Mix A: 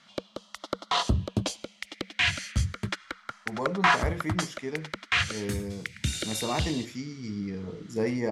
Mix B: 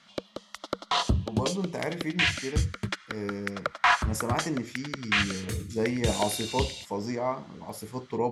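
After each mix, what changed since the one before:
speech: entry -2.20 s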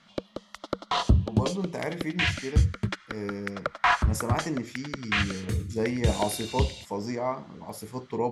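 background: add tilt EQ -1.5 dB/octave

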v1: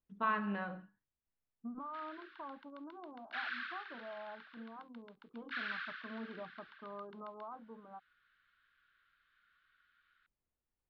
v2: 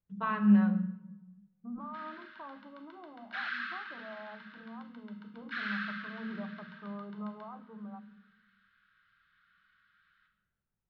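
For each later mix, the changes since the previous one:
reverb: on, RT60 1.1 s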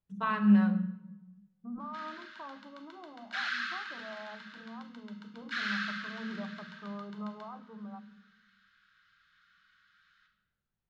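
master: remove distance through air 280 m

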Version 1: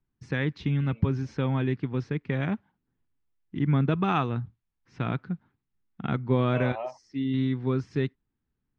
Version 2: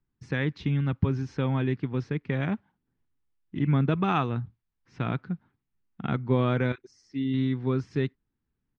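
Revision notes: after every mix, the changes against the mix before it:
second voice: entry +2.75 s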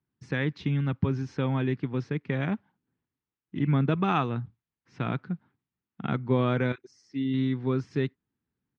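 first voice: add high-pass 100 Hz

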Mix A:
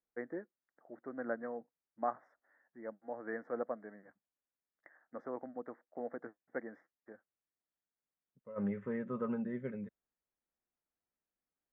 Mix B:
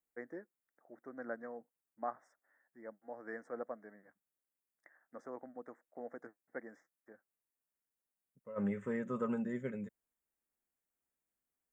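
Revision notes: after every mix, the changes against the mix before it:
first voice -5.5 dB; master: remove distance through air 350 m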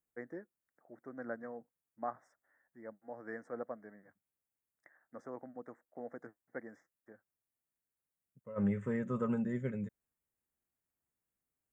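master: add peaking EQ 100 Hz +11 dB 1.4 oct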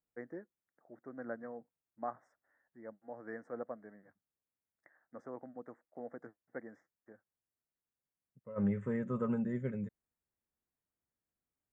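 master: add treble shelf 2.8 kHz -8 dB

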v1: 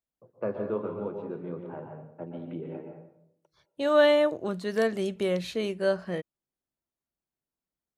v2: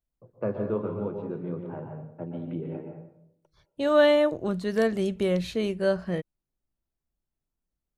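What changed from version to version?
master: remove high-pass 280 Hz 6 dB/octave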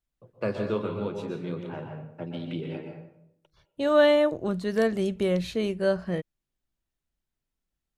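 first voice: remove low-pass 1.1 kHz 12 dB/octave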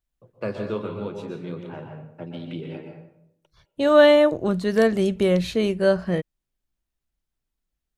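second voice +5.5 dB

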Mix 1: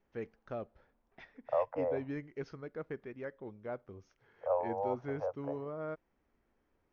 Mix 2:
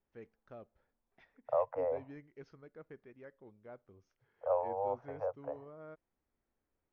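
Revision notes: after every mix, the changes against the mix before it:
first voice -10.5 dB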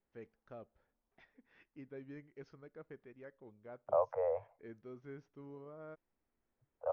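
second voice: entry +2.40 s

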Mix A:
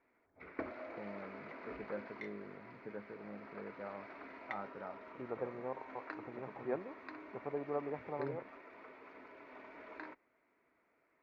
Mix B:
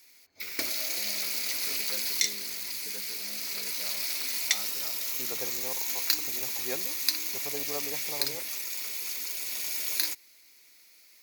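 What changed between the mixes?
first voice -4.5 dB; master: remove low-pass 1.4 kHz 24 dB/octave

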